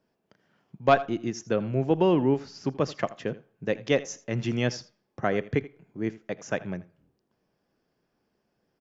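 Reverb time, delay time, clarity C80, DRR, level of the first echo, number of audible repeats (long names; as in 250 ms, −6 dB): no reverb audible, 82 ms, no reverb audible, no reverb audible, −18.5 dB, 1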